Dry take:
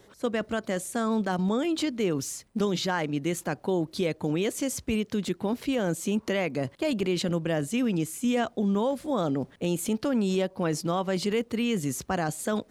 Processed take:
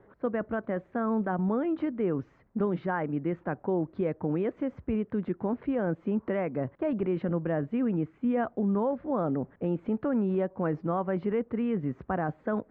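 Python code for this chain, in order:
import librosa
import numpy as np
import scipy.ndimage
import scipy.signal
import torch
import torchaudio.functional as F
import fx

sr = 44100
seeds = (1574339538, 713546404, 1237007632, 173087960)

y = scipy.signal.sosfilt(scipy.signal.butter(4, 1700.0, 'lowpass', fs=sr, output='sos'), x)
y = y * 10.0 ** (-1.5 / 20.0)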